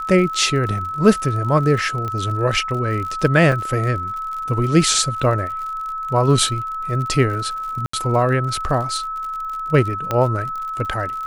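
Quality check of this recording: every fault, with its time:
surface crackle 57 per second −28 dBFS
whistle 1,300 Hz −24 dBFS
0:02.08: click −15 dBFS
0:03.52: drop-out 2.1 ms
0:07.86–0:07.93: drop-out 74 ms
0:10.11: click −7 dBFS

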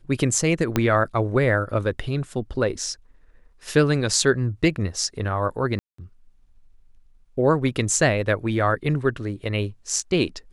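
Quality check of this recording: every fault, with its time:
0:00.76: click −6 dBFS
0:05.79–0:05.98: drop-out 194 ms

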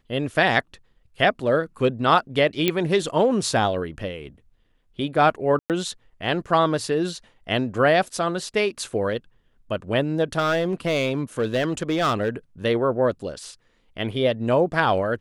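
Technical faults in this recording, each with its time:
0:02.68: click −6 dBFS
0:05.59–0:05.70: drop-out 108 ms
0:10.38–0:12.30: clipping −17 dBFS

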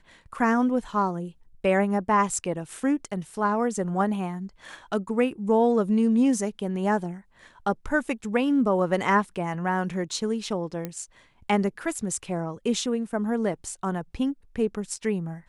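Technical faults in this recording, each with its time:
0:10.85: click −17 dBFS

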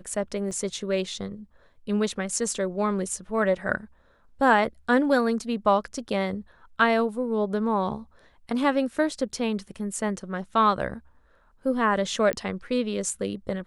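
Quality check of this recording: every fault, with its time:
0:00.51: drop-out 2.5 ms
0:12.33: click −12 dBFS

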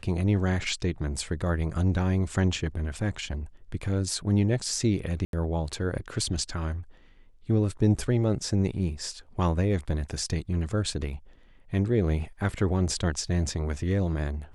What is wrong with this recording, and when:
0:05.25–0:05.33: drop-out 82 ms

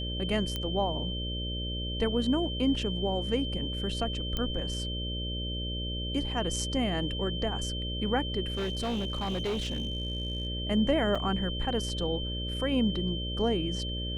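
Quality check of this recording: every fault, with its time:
mains buzz 60 Hz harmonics 10 −35 dBFS
whistle 3,100 Hz −36 dBFS
0:00.56: click −18 dBFS
0:04.37: click −18 dBFS
0:08.52–0:10.47: clipping −27.5 dBFS
0:11.15: drop-out 4.7 ms

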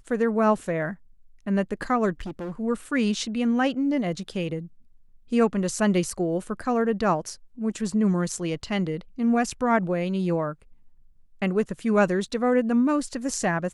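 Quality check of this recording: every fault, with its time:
0:02.20–0:02.60: clipping −29.5 dBFS

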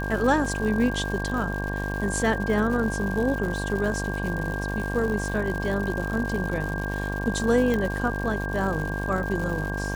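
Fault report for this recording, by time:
mains buzz 50 Hz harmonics 23 −30 dBFS
surface crackle 210 per second −31 dBFS
whistle 1,600 Hz −32 dBFS
0:07.74: click −14 dBFS

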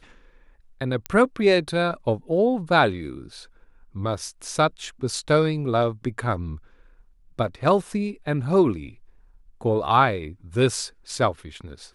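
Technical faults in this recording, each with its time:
0:01.06: click −12 dBFS

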